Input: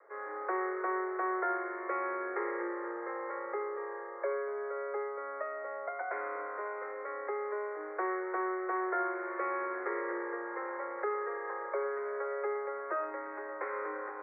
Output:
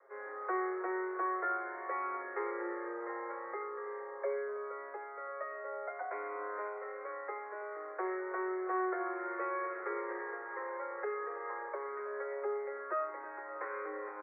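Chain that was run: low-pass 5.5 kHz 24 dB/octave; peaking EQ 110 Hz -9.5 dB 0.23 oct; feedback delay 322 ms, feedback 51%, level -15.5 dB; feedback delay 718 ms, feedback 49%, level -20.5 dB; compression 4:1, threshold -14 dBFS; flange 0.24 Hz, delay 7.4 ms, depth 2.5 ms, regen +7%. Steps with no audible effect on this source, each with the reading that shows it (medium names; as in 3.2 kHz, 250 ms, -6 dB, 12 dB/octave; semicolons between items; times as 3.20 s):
low-pass 5.5 kHz: input has nothing above 2.3 kHz; peaking EQ 110 Hz: input has nothing below 270 Hz; compression, threshold -14 dBFS: peak at its input -21.0 dBFS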